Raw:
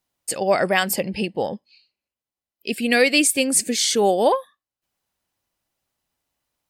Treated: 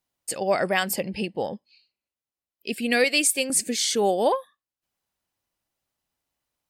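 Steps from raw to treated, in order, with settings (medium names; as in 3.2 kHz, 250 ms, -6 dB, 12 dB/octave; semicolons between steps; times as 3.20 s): 3.04–3.50 s: tone controls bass -14 dB, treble +2 dB; trim -4 dB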